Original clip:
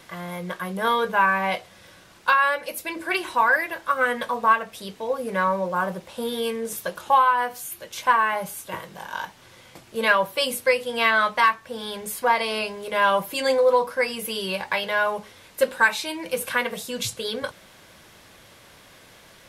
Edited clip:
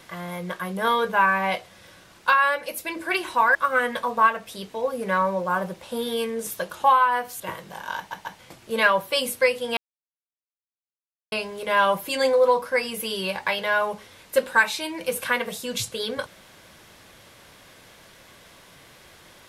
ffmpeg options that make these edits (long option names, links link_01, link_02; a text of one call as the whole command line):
ffmpeg -i in.wav -filter_complex "[0:a]asplit=8[link_01][link_02][link_03][link_04][link_05][link_06][link_07][link_08];[link_01]atrim=end=3.552[link_09];[link_02]atrim=start=3.808:end=7.662[link_10];[link_03]atrim=start=8.648:end=9.362[link_11];[link_04]atrim=start=9.218:end=9.362[link_12];[link_05]atrim=start=9.218:end=9.362[link_13];[link_06]atrim=start=9.638:end=11.02,asetpts=PTS-STARTPTS,afade=type=out:start_time=1.378:duration=0.004:curve=hsin[link_14];[link_07]atrim=start=11.02:end=12.57,asetpts=PTS-STARTPTS,volume=0[link_15];[link_08]atrim=start=12.57,asetpts=PTS-STARTPTS,afade=type=in:duration=0.004:curve=hsin[link_16];[link_09][link_10]acrossfade=duration=0.004:curve1=hsin:curve2=hsin[link_17];[link_17][link_11]acrossfade=duration=0.004:curve1=hsin:curve2=hsin[link_18];[link_18][link_12]acrossfade=duration=0.004:curve1=hsin:curve2=hsin[link_19];[link_19][link_13]acrossfade=duration=0.004:curve1=hsin:curve2=hsin[link_20];[link_14][link_15][link_16]concat=n=3:v=0:a=1[link_21];[link_20][link_21]acrossfade=duration=0.004:curve1=hsin:curve2=hsin" out.wav